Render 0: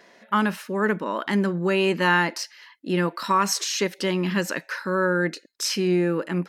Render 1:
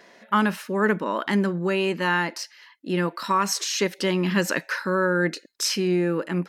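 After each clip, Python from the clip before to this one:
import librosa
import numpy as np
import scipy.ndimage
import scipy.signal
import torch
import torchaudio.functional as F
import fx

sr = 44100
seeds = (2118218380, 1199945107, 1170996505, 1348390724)

y = fx.rider(x, sr, range_db=10, speed_s=0.5)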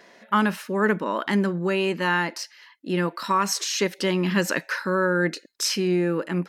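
y = x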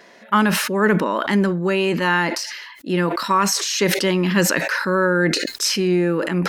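y = fx.sustainer(x, sr, db_per_s=43.0)
y = y * 10.0 ** (4.0 / 20.0)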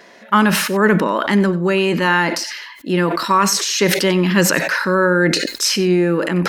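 y = x + 10.0 ** (-17.0 / 20.0) * np.pad(x, (int(93 * sr / 1000.0), 0))[:len(x)]
y = y * 10.0 ** (3.0 / 20.0)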